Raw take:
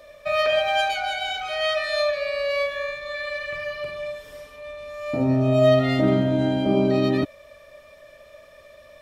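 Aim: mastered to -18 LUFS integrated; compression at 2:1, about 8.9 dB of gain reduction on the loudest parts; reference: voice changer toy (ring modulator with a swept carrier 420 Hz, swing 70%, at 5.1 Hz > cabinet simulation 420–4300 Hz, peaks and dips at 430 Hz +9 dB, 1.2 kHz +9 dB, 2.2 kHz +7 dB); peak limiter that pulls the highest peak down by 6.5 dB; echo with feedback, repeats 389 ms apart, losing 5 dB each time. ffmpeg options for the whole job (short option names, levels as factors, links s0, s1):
-af "acompressor=threshold=0.0355:ratio=2,alimiter=limit=0.075:level=0:latency=1,aecho=1:1:389|778|1167|1556|1945|2334|2723:0.562|0.315|0.176|0.0988|0.0553|0.031|0.0173,aeval=exprs='val(0)*sin(2*PI*420*n/s+420*0.7/5.1*sin(2*PI*5.1*n/s))':c=same,highpass=420,equalizer=f=430:t=q:w=4:g=9,equalizer=f=1200:t=q:w=4:g=9,equalizer=f=2200:t=q:w=4:g=7,lowpass=f=4300:w=0.5412,lowpass=f=4300:w=1.3066,volume=3.76"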